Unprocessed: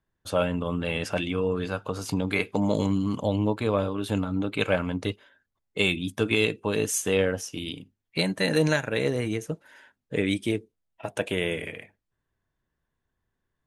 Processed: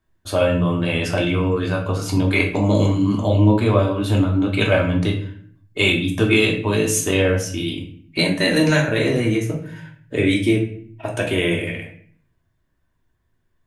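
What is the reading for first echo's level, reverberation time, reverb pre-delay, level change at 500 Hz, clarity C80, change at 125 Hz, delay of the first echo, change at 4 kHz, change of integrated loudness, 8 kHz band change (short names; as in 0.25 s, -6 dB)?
none, 0.55 s, 3 ms, +6.5 dB, 12.0 dB, +11.0 dB, none, +7.5 dB, +8.0 dB, +6.5 dB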